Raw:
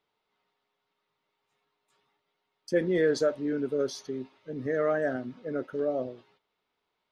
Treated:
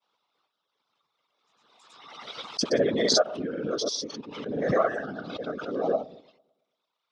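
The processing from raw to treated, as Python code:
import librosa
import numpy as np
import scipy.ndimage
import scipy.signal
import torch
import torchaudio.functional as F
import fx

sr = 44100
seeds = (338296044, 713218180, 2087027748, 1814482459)

p1 = fx.dereverb_blind(x, sr, rt60_s=1.2)
p2 = fx.level_steps(p1, sr, step_db=14)
p3 = p1 + (p2 * 10.0 ** (0.0 / 20.0))
p4 = fx.granulator(p3, sr, seeds[0], grain_ms=100.0, per_s=20.0, spray_ms=100.0, spread_st=0)
p5 = fx.whisperise(p4, sr, seeds[1])
p6 = fx.cabinet(p5, sr, low_hz=170.0, low_slope=12, high_hz=7800.0, hz=(360.0, 1200.0, 1900.0, 3600.0, 5400.0), db=(-5, 6, -5, 6, 7))
p7 = p6 + fx.echo_bbd(p6, sr, ms=112, stages=1024, feedback_pct=51, wet_db=-24, dry=0)
y = fx.pre_swell(p7, sr, db_per_s=40.0)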